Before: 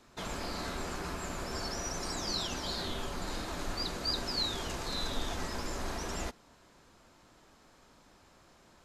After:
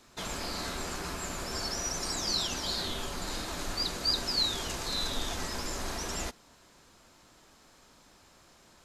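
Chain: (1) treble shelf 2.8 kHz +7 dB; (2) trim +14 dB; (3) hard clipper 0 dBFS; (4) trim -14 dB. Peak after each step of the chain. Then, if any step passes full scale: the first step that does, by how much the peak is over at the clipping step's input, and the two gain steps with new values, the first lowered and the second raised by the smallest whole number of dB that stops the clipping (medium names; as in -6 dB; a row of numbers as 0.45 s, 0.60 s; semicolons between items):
-17.0 dBFS, -3.0 dBFS, -3.0 dBFS, -17.0 dBFS; nothing clips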